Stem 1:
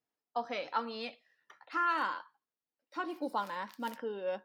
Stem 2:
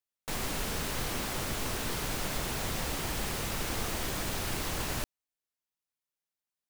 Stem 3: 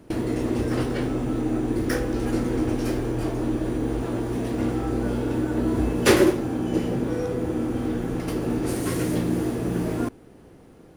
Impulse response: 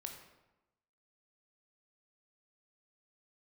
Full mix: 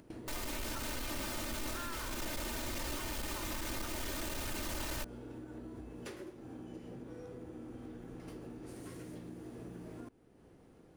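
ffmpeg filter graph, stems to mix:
-filter_complex "[0:a]highpass=1100,volume=0.355[s0];[1:a]aecho=1:1:3.3:0.87,asoftclip=type=tanh:threshold=0.0376,volume=0.708[s1];[2:a]acompressor=mode=upward:threshold=0.0141:ratio=2.5,equalizer=f=13000:w=2.5:g=-5,acompressor=threshold=0.0398:ratio=12,volume=0.168[s2];[s0][s1][s2]amix=inputs=3:normalize=0,alimiter=level_in=2.51:limit=0.0631:level=0:latency=1:release=99,volume=0.398"

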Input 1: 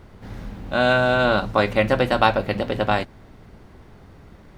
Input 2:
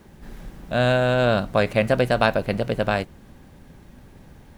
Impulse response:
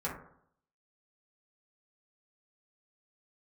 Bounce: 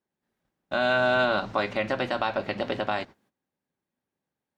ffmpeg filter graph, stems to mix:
-filter_complex "[0:a]lowpass=f=7000:w=0.5412,lowpass=f=7000:w=1.3066,bandreject=f=490:w=12,volume=0.841[s0];[1:a]highpass=f=140:p=1,alimiter=limit=0.251:level=0:latency=1:release=152,volume=0.119,asplit=2[s1][s2];[s2]apad=whole_len=201727[s3];[s0][s3]sidechaingate=range=0.0224:threshold=0.00141:ratio=16:detection=peak[s4];[s4][s1]amix=inputs=2:normalize=0,highpass=f=280:p=1,agate=range=0.178:threshold=0.00112:ratio=16:detection=peak,alimiter=limit=0.237:level=0:latency=1:release=159"

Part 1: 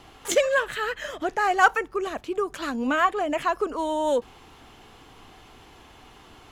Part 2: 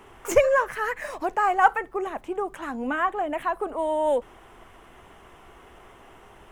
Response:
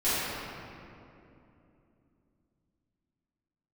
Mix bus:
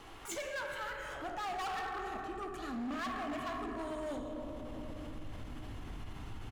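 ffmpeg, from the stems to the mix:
-filter_complex "[0:a]asubboost=boost=8:cutoff=190,volume=0.447,asplit=2[s0][s1];[s1]volume=0.224[s2];[1:a]lowshelf=f=430:g=-10.5,adelay=1.7,volume=0.531,asplit=2[s3][s4];[s4]volume=0.133[s5];[2:a]atrim=start_sample=2205[s6];[s2][s5]amix=inputs=2:normalize=0[s7];[s7][s6]afir=irnorm=-1:irlink=0[s8];[s0][s3][s8]amix=inputs=3:normalize=0,volume=20,asoftclip=hard,volume=0.0501,alimiter=level_in=3.98:limit=0.0631:level=0:latency=1:release=34,volume=0.251"

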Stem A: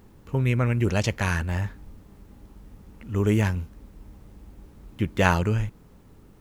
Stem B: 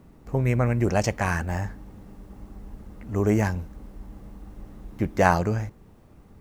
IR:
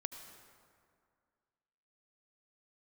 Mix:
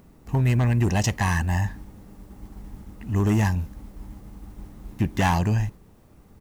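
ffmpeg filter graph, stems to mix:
-filter_complex "[0:a]acompressor=threshold=0.0316:ratio=2,volume=1.33[s0];[1:a]highshelf=f=4700:g=7,asoftclip=type=hard:threshold=0.126,adelay=1.1,volume=0.891,asplit=2[s1][s2];[s2]apad=whole_len=282558[s3];[s0][s3]sidechaingate=range=0.0224:threshold=0.00891:ratio=16:detection=peak[s4];[s4][s1]amix=inputs=2:normalize=0"

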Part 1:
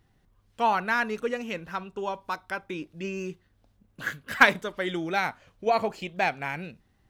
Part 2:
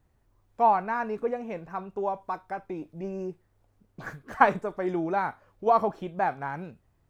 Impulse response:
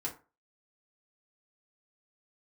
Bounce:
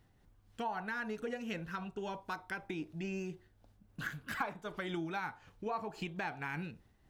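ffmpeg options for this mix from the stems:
-filter_complex "[0:a]acompressor=threshold=0.0447:ratio=6,volume=0.794[s0];[1:a]volume=0.473,asplit=2[s1][s2];[s2]volume=0.376[s3];[2:a]atrim=start_sample=2205[s4];[s3][s4]afir=irnorm=-1:irlink=0[s5];[s0][s1][s5]amix=inputs=3:normalize=0,tremolo=f=3.8:d=0.32,acompressor=threshold=0.0158:ratio=4"

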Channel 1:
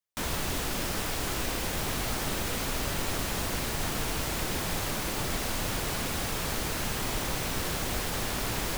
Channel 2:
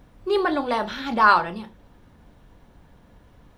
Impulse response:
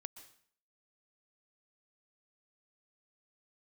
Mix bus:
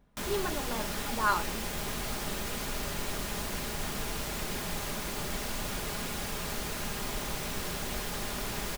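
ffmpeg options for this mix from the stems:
-filter_complex "[0:a]volume=0.596[s0];[1:a]volume=0.211[s1];[s0][s1]amix=inputs=2:normalize=0,aecho=1:1:4.9:0.36"

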